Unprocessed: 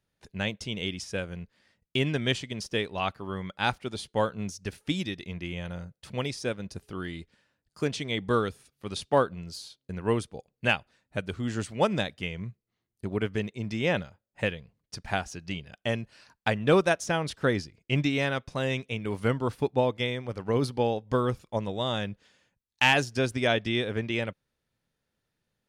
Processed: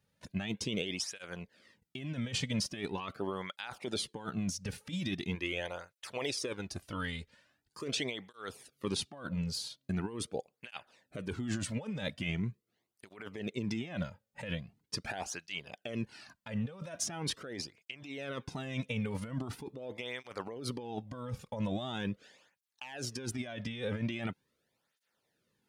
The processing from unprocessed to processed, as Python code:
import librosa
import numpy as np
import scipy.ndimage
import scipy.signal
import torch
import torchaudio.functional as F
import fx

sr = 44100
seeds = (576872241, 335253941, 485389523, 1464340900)

y = fx.peak_eq(x, sr, hz=180.0, db=fx.line((5.34, -15.0), (8.04, -6.0)), octaves=1.2, at=(5.34, 8.04), fade=0.02)
y = fx.over_compress(y, sr, threshold_db=-35.0, ratio=-1.0)
y = fx.flanger_cancel(y, sr, hz=0.42, depth_ms=3.1)